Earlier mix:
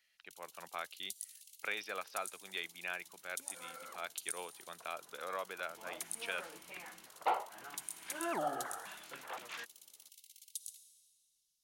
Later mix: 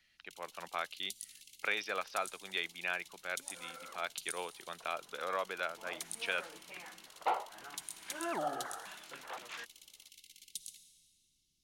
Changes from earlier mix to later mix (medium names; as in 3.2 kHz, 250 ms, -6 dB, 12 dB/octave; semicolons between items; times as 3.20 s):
speech +4.5 dB; first sound: remove pre-emphasis filter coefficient 0.9